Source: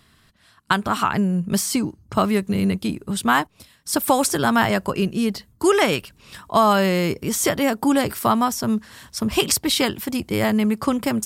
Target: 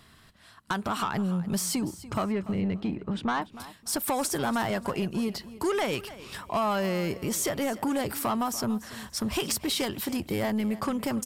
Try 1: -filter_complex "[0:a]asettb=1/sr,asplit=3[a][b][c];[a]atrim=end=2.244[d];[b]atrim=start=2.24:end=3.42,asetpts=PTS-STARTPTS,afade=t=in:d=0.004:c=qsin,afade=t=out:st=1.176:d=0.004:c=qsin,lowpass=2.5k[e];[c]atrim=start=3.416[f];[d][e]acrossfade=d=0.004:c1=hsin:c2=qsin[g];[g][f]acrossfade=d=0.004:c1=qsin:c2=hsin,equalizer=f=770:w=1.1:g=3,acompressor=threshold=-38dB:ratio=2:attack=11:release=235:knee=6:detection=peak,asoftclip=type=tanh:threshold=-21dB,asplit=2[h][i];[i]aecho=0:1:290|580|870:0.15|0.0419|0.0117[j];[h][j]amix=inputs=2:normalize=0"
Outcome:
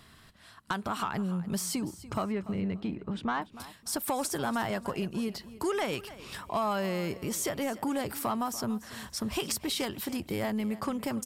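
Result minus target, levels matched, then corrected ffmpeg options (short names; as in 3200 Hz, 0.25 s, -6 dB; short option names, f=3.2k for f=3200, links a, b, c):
compressor: peak gain reduction +4.5 dB
-filter_complex "[0:a]asettb=1/sr,asplit=3[a][b][c];[a]atrim=end=2.244[d];[b]atrim=start=2.24:end=3.42,asetpts=PTS-STARTPTS,afade=t=in:d=0.004:c=qsin,afade=t=out:st=1.176:d=0.004:c=qsin,lowpass=2.5k[e];[c]atrim=start=3.416[f];[d][e]acrossfade=d=0.004:c1=hsin:c2=qsin[g];[g][f]acrossfade=d=0.004:c1=qsin:c2=hsin,equalizer=f=770:w=1.1:g=3,acompressor=threshold=-29dB:ratio=2:attack=11:release=235:knee=6:detection=peak,asoftclip=type=tanh:threshold=-21dB,asplit=2[h][i];[i]aecho=0:1:290|580|870:0.15|0.0419|0.0117[j];[h][j]amix=inputs=2:normalize=0"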